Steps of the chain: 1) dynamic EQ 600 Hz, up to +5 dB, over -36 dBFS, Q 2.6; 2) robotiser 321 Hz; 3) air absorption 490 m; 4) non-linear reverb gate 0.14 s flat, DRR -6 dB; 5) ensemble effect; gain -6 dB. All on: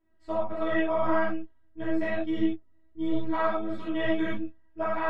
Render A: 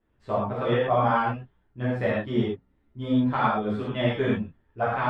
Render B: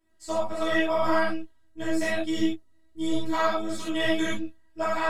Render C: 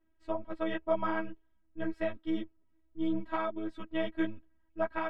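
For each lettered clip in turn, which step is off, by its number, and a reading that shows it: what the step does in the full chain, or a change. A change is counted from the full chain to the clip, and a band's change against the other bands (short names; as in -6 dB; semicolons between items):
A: 2, 125 Hz band +12.0 dB; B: 3, 2 kHz band +3.0 dB; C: 4, momentary loudness spread change +4 LU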